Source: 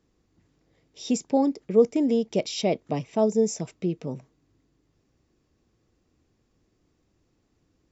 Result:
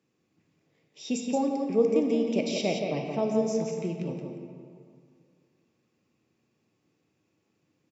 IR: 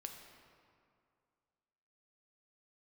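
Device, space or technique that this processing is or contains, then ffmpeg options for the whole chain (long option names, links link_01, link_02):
PA in a hall: -filter_complex "[0:a]highpass=frequency=110:width=0.5412,highpass=frequency=110:width=1.3066,equalizer=frequency=2500:width_type=o:width=0.38:gain=8,aecho=1:1:173:0.501[link_01];[1:a]atrim=start_sample=2205[link_02];[link_01][link_02]afir=irnorm=-1:irlink=0,asettb=1/sr,asplit=3[link_03][link_04][link_05];[link_03]atrim=end=2.804[link_06];[link_04]atrim=start=2.8:end=3.73,asetpts=PTS-STARTPTS,afade=type=in:duration=0.004:curve=qsin,afade=type=out:start_time=0.926:duration=0.004:curve=qsin,lowpass=frequency=6300:width=0.5412,lowpass=frequency=6300:width=1.3066[link_07];[link_05]atrim=start=3.726[link_08];[link_06][link_07]acrossfade=duration=0.004:curve1=hsin:curve2=qsin[link_09];[link_09][link_08]acrossfade=duration=0.004:curve1=qsin:curve2=hsin"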